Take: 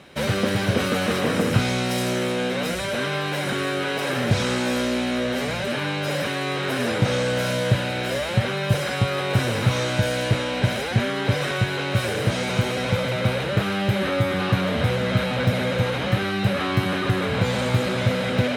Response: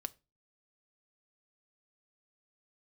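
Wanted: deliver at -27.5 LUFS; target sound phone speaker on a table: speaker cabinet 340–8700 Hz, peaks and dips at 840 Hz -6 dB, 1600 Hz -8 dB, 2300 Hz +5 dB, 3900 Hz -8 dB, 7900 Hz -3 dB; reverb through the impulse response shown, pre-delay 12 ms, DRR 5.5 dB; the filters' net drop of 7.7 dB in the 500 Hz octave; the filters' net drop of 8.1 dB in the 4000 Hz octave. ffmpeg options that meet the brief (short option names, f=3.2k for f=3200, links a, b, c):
-filter_complex "[0:a]equalizer=f=500:t=o:g=-8,equalizer=f=4k:t=o:g=-7.5,asplit=2[a][b];[1:a]atrim=start_sample=2205,adelay=12[c];[b][c]afir=irnorm=-1:irlink=0,volume=-3.5dB[d];[a][d]amix=inputs=2:normalize=0,highpass=f=340:w=0.5412,highpass=f=340:w=1.3066,equalizer=f=840:t=q:w=4:g=-6,equalizer=f=1.6k:t=q:w=4:g=-8,equalizer=f=2.3k:t=q:w=4:g=5,equalizer=f=3.9k:t=q:w=4:g=-8,equalizer=f=7.9k:t=q:w=4:g=-3,lowpass=f=8.7k:w=0.5412,lowpass=f=8.7k:w=1.3066,volume=1.5dB"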